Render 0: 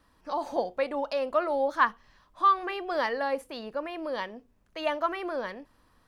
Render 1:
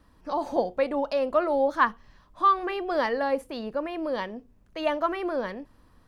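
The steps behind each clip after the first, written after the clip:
low-shelf EQ 460 Hz +8.5 dB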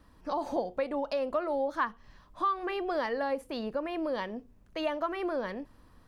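downward compressor 2.5 to 1, threshold −30 dBFS, peak gain reduction 9.5 dB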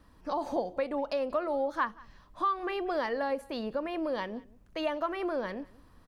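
single-tap delay 183 ms −23.5 dB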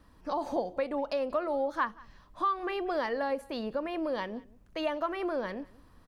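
no processing that can be heard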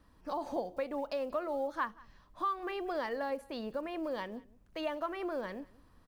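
one scale factor per block 7 bits
level −4.5 dB

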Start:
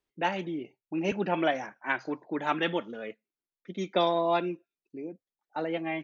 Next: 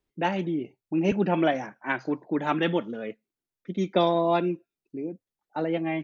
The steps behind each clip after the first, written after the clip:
low-shelf EQ 380 Hz +10 dB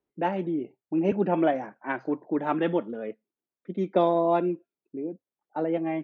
resonant band-pass 490 Hz, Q 0.52
level +1 dB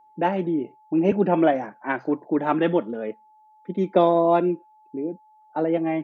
steady tone 860 Hz −57 dBFS
level +4.5 dB

